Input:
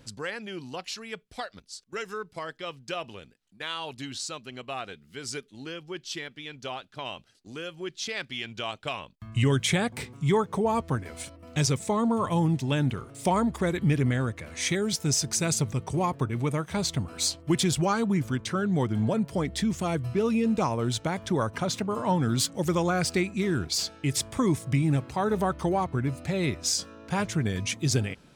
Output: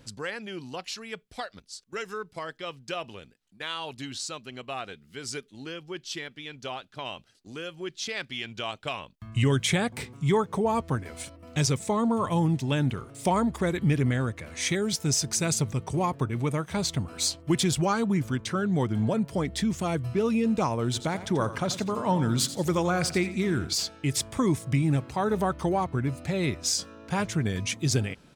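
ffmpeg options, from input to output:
ffmpeg -i in.wav -filter_complex "[0:a]asplit=3[link_01][link_02][link_03];[link_01]afade=type=out:start_time=20.93:duration=0.02[link_04];[link_02]aecho=1:1:86|172|258:0.224|0.0739|0.0244,afade=type=in:start_time=20.93:duration=0.02,afade=type=out:start_time=23.73:duration=0.02[link_05];[link_03]afade=type=in:start_time=23.73:duration=0.02[link_06];[link_04][link_05][link_06]amix=inputs=3:normalize=0" out.wav

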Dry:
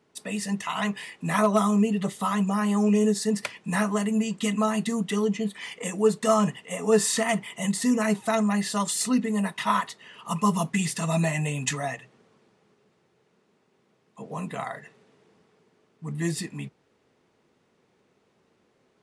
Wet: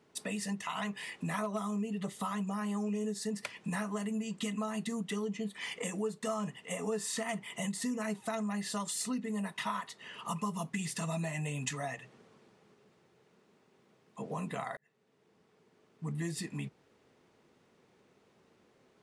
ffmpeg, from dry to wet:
ffmpeg -i in.wav -filter_complex "[0:a]asplit=2[link_01][link_02];[link_01]atrim=end=14.77,asetpts=PTS-STARTPTS,afade=type=out:start_time=14.766:duration=0.004:curve=hsin[link_03];[link_02]atrim=start=14.77,asetpts=PTS-STARTPTS,afade=type=in:duration=1.34[link_04];[link_03][link_04]concat=n=2:v=0:a=1,acompressor=threshold=-35dB:ratio=4" out.wav

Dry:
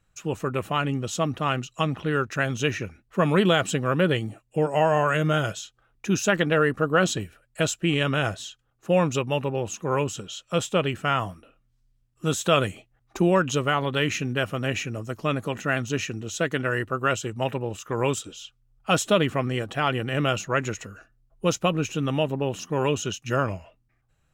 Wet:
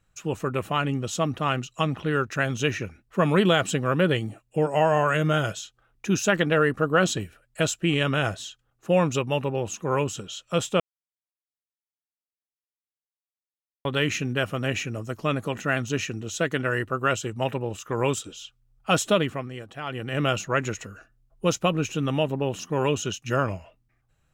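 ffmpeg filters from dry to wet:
ffmpeg -i in.wav -filter_complex "[0:a]asplit=5[link_01][link_02][link_03][link_04][link_05];[link_01]atrim=end=10.8,asetpts=PTS-STARTPTS,afade=type=out:start_time=10.796:duration=0.004:curve=hsin[link_06];[link_02]atrim=start=10.8:end=13.85,asetpts=PTS-STARTPTS,volume=0[link_07];[link_03]atrim=start=13.85:end=19.49,asetpts=PTS-STARTPTS,afade=type=in:duration=0.004:curve=hsin,afade=type=out:start_time=5.24:duration=0.4:silence=0.316228[link_08];[link_04]atrim=start=19.49:end=19.85,asetpts=PTS-STARTPTS,volume=-10dB[link_09];[link_05]atrim=start=19.85,asetpts=PTS-STARTPTS,afade=type=in:duration=0.4:silence=0.316228[link_10];[link_06][link_07][link_08][link_09][link_10]concat=n=5:v=0:a=1" out.wav

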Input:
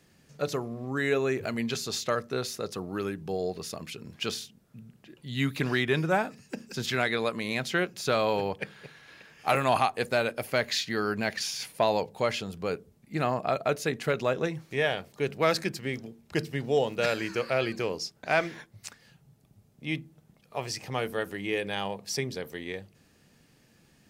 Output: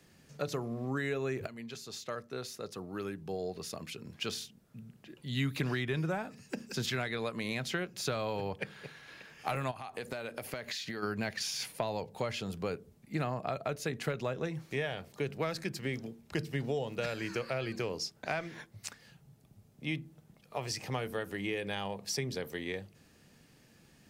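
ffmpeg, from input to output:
ffmpeg -i in.wav -filter_complex "[0:a]asplit=3[link_01][link_02][link_03];[link_01]afade=type=out:start_time=9.7:duration=0.02[link_04];[link_02]acompressor=threshold=-34dB:ratio=16:attack=3.2:release=140:knee=1:detection=peak,afade=type=in:start_time=9.7:duration=0.02,afade=type=out:start_time=11.02:duration=0.02[link_05];[link_03]afade=type=in:start_time=11.02:duration=0.02[link_06];[link_04][link_05][link_06]amix=inputs=3:normalize=0,asplit=2[link_07][link_08];[link_07]atrim=end=1.47,asetpts=PTS-STARTPTS,afade=type=out:start_time=1.466:duration=0.004:curve=hsin:silence=0.16788[link_09];[link_08]atrim=start=1.47,asetpts=PTS-STARTPTS,afade=type=in:duration=3.92:silence=0.16788[link_10];[link_09][link_10]concat=n=2:v=0:a=1,acrossover=split=140[link_11][link_12];[link_12]acompressor=threshold=-32dB:ratio=6[link_13];[link_11][link_13]amix=inputs=2:normalize=0" out.wav

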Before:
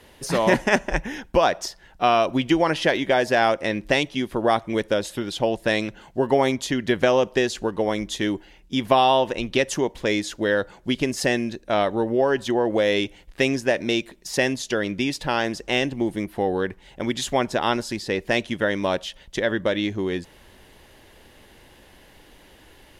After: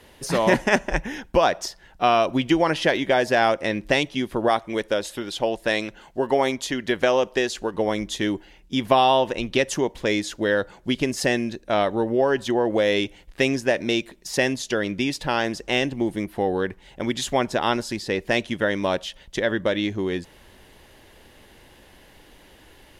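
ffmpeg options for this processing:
ffmpeg -i in.wav -filter_complex "[0:a]asettb=1/sr,asplit=3[link_01][link_02][link_03];[link_01]atrim=end=4.484[link_04];[link_02]atrim=start=4.48:end=7.74,asetpts=PTS-STARTPTS,afade=type=in:duration=0.004:curve=qsin,afade=type=out:start_time=3.256:duration=0.004:curve=qsin,equalizer=frequency=120:width=0.57:gain=-7[link_05];[link_03]atrim=start=7.736[link_06];[link_04][link_05]acrossfade=duration=0.004:curve1=hsin:curve2=qsin[link_07];[link_07][link_06]acrossfade=duration=0.004:curve1=qsin:curve2=hsin" out.wav

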